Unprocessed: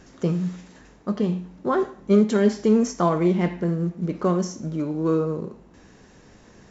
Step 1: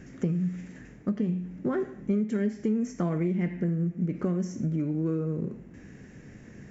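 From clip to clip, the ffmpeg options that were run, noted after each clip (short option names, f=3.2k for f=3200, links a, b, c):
-af "equalizer=f=125:t=o:w=1:g=9,equalizer=f=250:t=o:w=1:g=5,equalizer=f=1k:t=o:w=1:g=-10,equalizer=f=2k:t=o:w=1:g=9,equalizer=f=4k:t=o:w=1:g=-11,acompressor=threshold=-24dB:ratio=5,volume=-1.5dB"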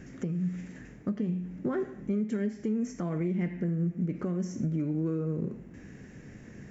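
-af "alimiter=limit=-22dB:level=0:latency=1:release=332"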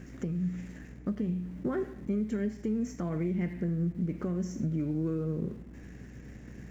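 -filter_complex "[0:a]asplit=2[a][b];[b]aeval=exprs='val(0)*gte(abs(val(0)),0.00631)':c=same,volume=-12dB[c];[a][c]amix=inputs=2:normalize=0,aeval=exprs='val(0)+0.00562*(sin(2*PI*60*n/s)+sin(2*PI*2*60*n/s)/2+sin(2*PI*3*60*n/s)/3+sin(2*PI*4*60*n/s)/4+sin(2*PI*5*60*n/s)/5)':c=same,volume=-3dB"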